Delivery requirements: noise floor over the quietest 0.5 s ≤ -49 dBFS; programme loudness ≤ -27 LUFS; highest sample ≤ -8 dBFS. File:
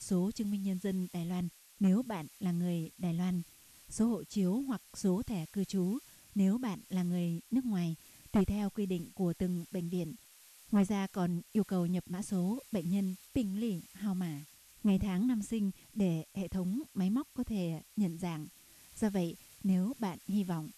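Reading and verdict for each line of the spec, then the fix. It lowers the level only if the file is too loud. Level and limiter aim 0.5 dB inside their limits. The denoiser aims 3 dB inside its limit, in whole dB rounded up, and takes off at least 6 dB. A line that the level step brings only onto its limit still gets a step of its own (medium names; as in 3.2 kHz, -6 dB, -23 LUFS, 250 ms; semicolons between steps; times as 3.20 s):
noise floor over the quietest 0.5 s -59 dBFS: pass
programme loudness -35.0 LUFS: pass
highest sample -17.5 dBFS: pass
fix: none needed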